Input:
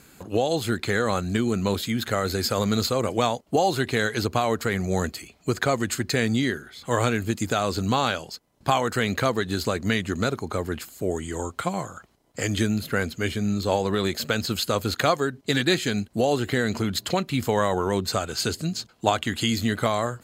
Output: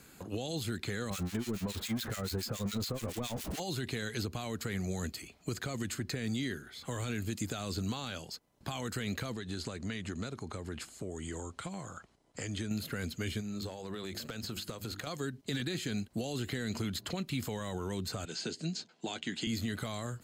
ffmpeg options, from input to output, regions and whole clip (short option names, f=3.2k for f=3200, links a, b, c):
-filter_complex "[0:a]asettb=1/sr,asplit=3[a][b][c];[a]atrim=end=1.104[d];[b]atrim=start=1.1:end=3.6,asetpts=PTS-STARTPTS,afade=t=in:d=0.004:c=qsin,afade=t=out:st=2.496:d=0.004:c=qsin,aeval=exprs='val(0)+0.5*0.075*sgn(val(0))':c=same,acrossover=split=1500[e][f];[e]aeval=exprs='val(0)*(1-1/2+1/2*cos(2*PI*7.1*n/s))':c=same[g];[f]aeval=exprs='val(0)*(1-1/2-1/2*cos(2*PI*7.1*n/s))':c=same[h];[g][h]amix=inputs=2:normalize=0[i];[c]atrim=start=3.596[j];[d][i]acrossfade=d=0.004:c1=hsin:c2=qsin[k];[k][j]acrossfade=d=0.004:c1=qsin:c2=hsin,asettb=1/sr,asplit=3[l][m][n];[l]atrim=end=9.334[o];[m]atrim=start=9.33:end=12.71,asetpts=PTS-STARTPTS,afade=t=in:d=0.004:c=qsin,afade=t=out:st=3.376:d=0.004:c=qsin,lowpass=f=10k:w=0.5412,lowpass=f=10k:w=1.3066,acompressor=threshold=-31dB:ratio=2.5:attack=3.2:release=140:knee=1:detection=peak[p];[n]atrim=start=12.706[q];[o][p]acrossfade=d=0.004:c1=hsin:c2=qsin[r];[r][q]acrossfade=d=0.004:c1=qsin:c2=hsin,asettb=1/sr,asplit=3[s][t][u];[s]atrim=end=13.404[v];[t]atrim=start=13.4:end=15.07,asetpts=PTS-STARTPTS,afade=t=in:d=0.004:c=qsin,afade=t=out:st=1.666:d=0.004:c=qsin,bandreject=f=50:t=h:w=6,bandreject=f=100:t=h:w=6,bandreject=f=150:t=h:w=6,bandreject=f=200:t=h:w=6,bandreject=f=250:t=h:w=6,bandreject=f=300:t=h:w=6,bandreject=f=350:t=h:w=6,acompressor=threshold=-29dB:ratio=12:attack=3.2:release=140:knee=1:detection=peak,aeval=exprs='clip(val(0),-1,0.0631)':c=same[w];[u]atrim=start=15.066[x];[v][w]acrossfade=d=0.004:c1=hsin:c2=qsin[y];[y][x]acrossfade=d=0.004:c1=qsin:c2=hsin,asettb=1/sr,asplit=3[z][aa][ab];[z]atrim=end=18.254[ac];[aa]atrim=start=18.25:end=19.47,asetpts=PTS-STARTPTS,afade=t=in:d=0.004:c=qsin,afade=t=out:st=1.216:d=0.004:c=qsin,highpass=f=170:w=0.5412,highpass=f=170:w=1.3066,equalizer=f=250:t=q:w=4:g=-4,equalizer=f=530:t=q:w=4:g=-3,equalizer=f=1.2k:t=q:w=4:g=-8,lowpass=f=7.5k:w=0.5412,lowpass=f=7.5k:w=1.3066,asplit=2[ad][ae];[ae]adelay=12,volume=-11dB[af];[ad][af]amix=inputs=2:normalize=0,atrim=end_sample=53802[ag];[ab]atrim=start=19.466[ah];[ac][ag]acrossfade=d=0.004:c1=hsin:c2=qsin[ai];[ai][ah]acrossfade=d=0.004:c1=qsin:c2=hsin,alimiter=limit=-16dB:level=0:latency=1:release=14,acrossover=split=300|2200[aj][ak][al];[aj]acompressor=threshold=-29dB:ratio=4[am];[ak]acompressor=threshold=-39dB:ratio=4[an];[al]acompressor=threshold=-35dB:ratio=4[ao];[am][an][ao]amix=inputs=3:normalize=0,volume=-4.5dB"